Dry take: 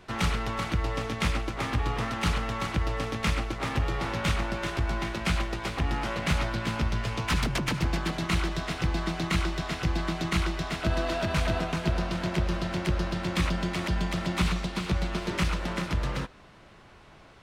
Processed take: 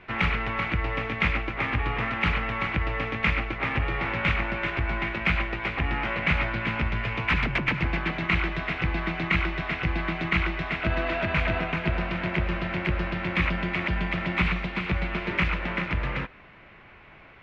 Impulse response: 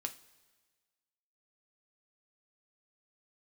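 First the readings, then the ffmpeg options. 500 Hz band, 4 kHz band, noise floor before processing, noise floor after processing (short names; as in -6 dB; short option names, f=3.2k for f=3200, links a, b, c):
+0.5 dB, -1.0 dB, -53 dBFS, -50 dBFS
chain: -af "lowpass=f=2.3k:t=q:w=3.1"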